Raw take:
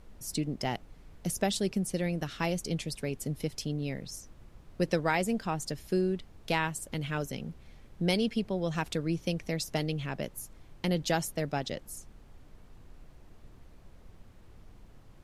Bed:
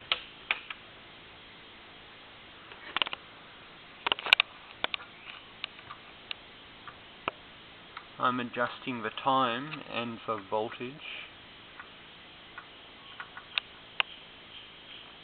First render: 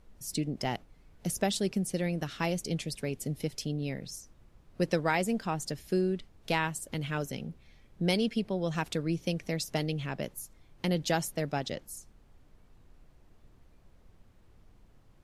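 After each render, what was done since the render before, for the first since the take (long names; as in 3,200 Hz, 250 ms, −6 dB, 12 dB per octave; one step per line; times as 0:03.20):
noise reduction from a noise print 6 dB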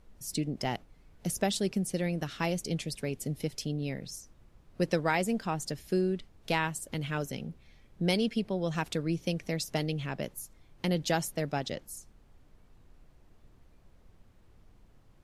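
no processing that can be heard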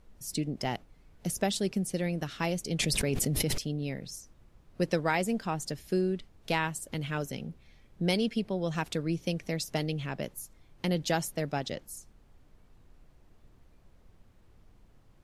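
0:02.79–0:03.58: envelope flattener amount 100%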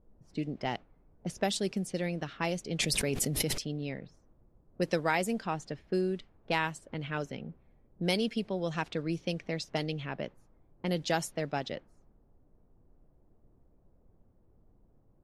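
low-pass that shuts in the quiet parts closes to 550 Hz, open at −25 dBFS
low-shelf EQ 190 Hz −6 dB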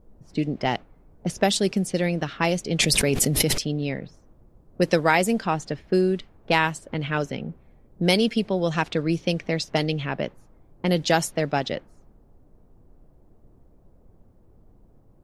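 level +9.5 dB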